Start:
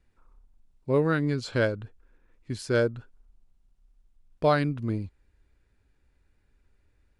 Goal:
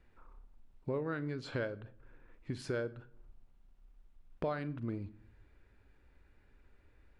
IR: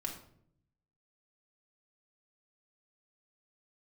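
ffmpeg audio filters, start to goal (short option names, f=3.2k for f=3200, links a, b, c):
-filter_complex "[0:a]bass=f=250:g=-4,treble=f=4k:g=-12,acompressor=threshold=-43dB:ratio=4,asplit=2[a][b];[1:a]atrim=start_sample=2205,adelay=40[c];[b][c]afir=irnorm=-1:irlink=0,volume=-15.5dB[d];[a][d]amix=inputs=2:normalize=0,volume=5.5dB"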